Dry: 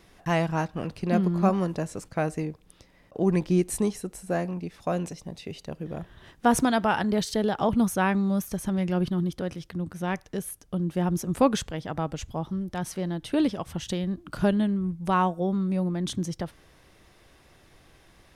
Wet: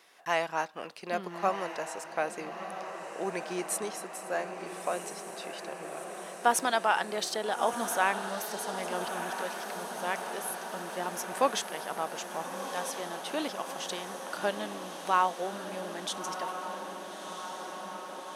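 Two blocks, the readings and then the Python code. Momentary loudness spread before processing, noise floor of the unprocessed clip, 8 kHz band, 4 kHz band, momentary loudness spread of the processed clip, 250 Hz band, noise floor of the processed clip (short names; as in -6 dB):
11 LU, -58 dBFS, +1.0 dB, +1.0 dB, 12 LU, -16.0 dB, -43 dBFS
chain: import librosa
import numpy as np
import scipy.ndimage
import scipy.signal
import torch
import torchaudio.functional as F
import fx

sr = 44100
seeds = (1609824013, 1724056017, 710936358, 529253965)

y = scipy.signal.sosfilt(scipy.signal.butter(2, 640.0, 'highpass', fs=sr, output='sos'), x)
y = fx.echo_diffused(y, sr, ms=1310, feedback_pct=75, wet_db=-8.5)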